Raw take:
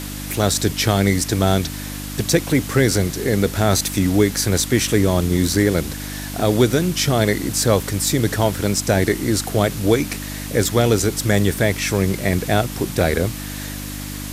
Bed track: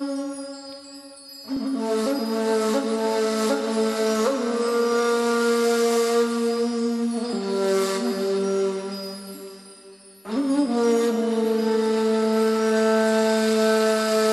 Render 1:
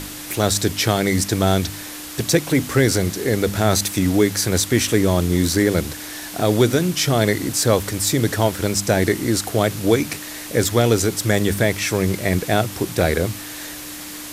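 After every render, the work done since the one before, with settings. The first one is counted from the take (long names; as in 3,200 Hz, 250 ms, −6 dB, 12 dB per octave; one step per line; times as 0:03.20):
hum removal 50 Hz, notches 5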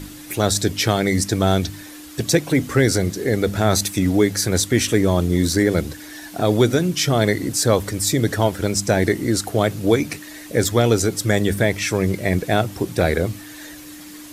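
broadband denoise 9 dB, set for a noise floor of −33 dBFS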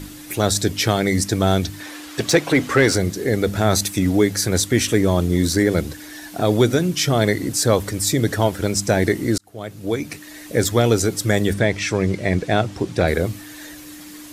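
0:01.80–0:02.95: mid-hump overdrive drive 14 dB, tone 2,900 Hz, clips at −2.5 dBFS
0:09.38–0:10.51: fade in
0:11.53–0:13.08: low-pass filter 6,900 Hz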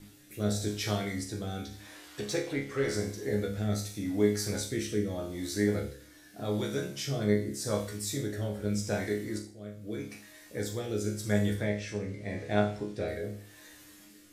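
resonators tuned to a chord C#2 fifth, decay 0.49 s
rotating-speaker cabinet horn 0.85 Hz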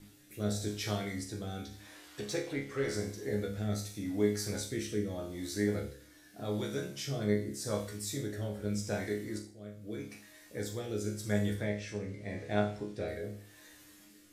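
level −3.5 dB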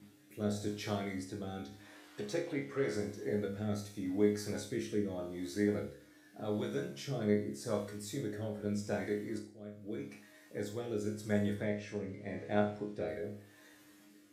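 high-pass filter 130 Hz 12 dB per octave
high-shelf EQ 2,700 Hz −8.5 dB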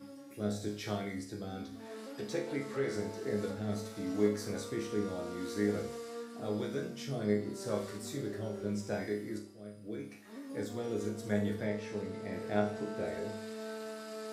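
mix in bed track −23 dB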